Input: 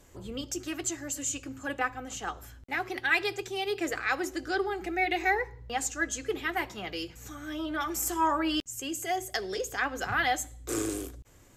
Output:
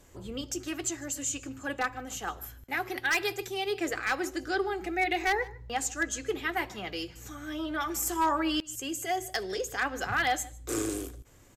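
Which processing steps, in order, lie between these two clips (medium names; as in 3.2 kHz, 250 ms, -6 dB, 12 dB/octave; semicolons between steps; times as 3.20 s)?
2.07–3.54 s: peaking EQ 12 kHz +13.5 dB 0.33 oct; wavefolder -19 dBFS; delay 152 ms -22.5 dB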